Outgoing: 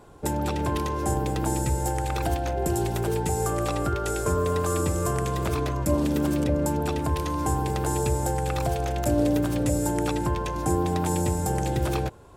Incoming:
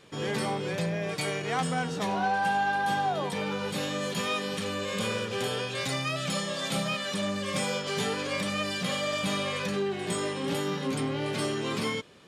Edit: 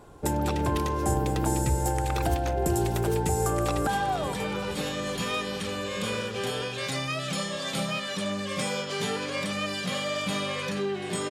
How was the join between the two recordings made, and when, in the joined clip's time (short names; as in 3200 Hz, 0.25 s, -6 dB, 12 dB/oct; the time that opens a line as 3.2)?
outgoing
3.29–3.87 echo throw 0.47 s, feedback 70%, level -10 dB
3.87 switch to incoming from 2.84 s